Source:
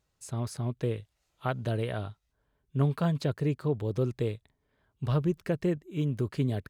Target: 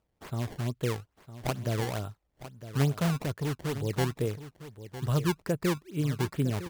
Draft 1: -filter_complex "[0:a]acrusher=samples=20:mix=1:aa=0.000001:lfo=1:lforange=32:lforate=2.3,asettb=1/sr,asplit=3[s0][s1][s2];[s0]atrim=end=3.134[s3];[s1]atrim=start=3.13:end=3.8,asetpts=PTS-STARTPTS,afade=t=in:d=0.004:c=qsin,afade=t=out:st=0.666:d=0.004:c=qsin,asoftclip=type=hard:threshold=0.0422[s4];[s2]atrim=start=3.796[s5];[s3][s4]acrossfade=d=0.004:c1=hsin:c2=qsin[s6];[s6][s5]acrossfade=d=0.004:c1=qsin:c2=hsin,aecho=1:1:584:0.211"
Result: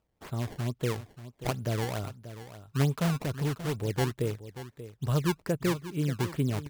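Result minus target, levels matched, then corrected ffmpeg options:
echo 373 ms early
-filter_complex "[0:a]acrusher=samples=20:mix=1:aa=0.000001:lfo=1:lforange=32:lforate=2.3,asettb=1/sr,asplit=3[s0][s1][s2];[s0]atrim=end=3.134[s3];[s1]atrim=start=3.13:end=3.8,asetpts=PTS-STARTPTS,afade=t=in:d=0.004:c=qsin,afade=t=out:st=0.666:d=0.004:c=qsin,asoftclip=type=hard:threshold=0.0422[s4];[s2]atrim=start=3.796[s5];[s3][s4]acrossfade=d=0.004:c1=hsin:c2=qsin[s6];[s6][s5]acrossfade=d=0.004:c1=qsin:c2=hsin,aecho=1:1:957:0.211"

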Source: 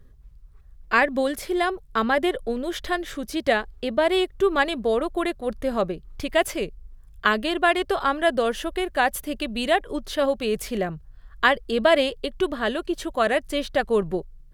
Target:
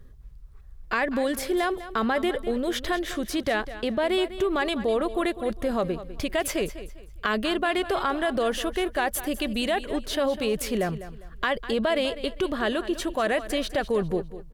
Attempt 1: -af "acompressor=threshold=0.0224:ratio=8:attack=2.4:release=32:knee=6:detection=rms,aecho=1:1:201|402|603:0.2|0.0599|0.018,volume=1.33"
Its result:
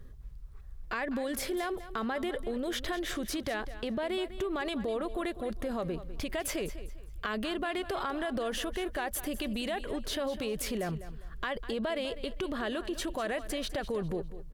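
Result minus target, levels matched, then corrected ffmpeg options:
compression: peak gain reduction +9 dB
-af "acompressor=threshold=0.075:ratio=8:attack=2.4:release=32:knee=6:detection=rms,aecho=1:1:201|402|603:0.2|0.0599|0.018,volume=1.33"

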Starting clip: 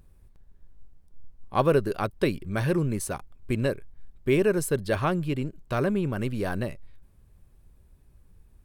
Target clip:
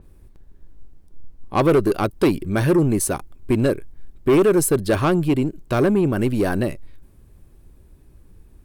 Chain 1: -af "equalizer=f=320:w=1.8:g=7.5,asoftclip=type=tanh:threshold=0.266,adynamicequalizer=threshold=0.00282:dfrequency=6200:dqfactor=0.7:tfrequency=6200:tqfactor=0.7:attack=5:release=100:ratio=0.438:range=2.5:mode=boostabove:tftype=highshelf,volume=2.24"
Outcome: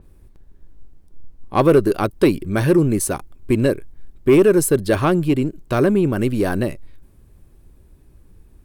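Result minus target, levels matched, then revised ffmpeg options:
saturation: distortion -8 dB
-af "equalizer=f=320:w=1.8:g=7.5,asoftclip=type=tanh:threshold=0.133,adynamicequalizer=threshold=0.00282:dfrequency=6200:dqfactor=0.7:tfrequency=6200:tqfactor=0.7:attack=5:release=100:ratio=0.438:range=2.5:mode=boostabove:tftype=highshelf,volume=2.24"

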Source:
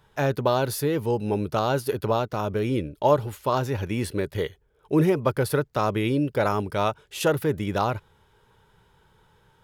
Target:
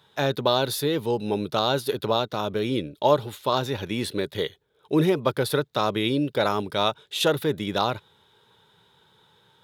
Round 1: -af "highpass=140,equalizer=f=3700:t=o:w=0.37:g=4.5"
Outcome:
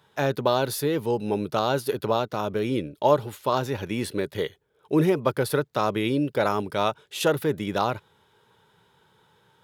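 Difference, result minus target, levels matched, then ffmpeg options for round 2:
4 kHz band -6.0 dB
-af "highpass=140,equalizer=f=3700:t=o:w=0.37:g=13.5"

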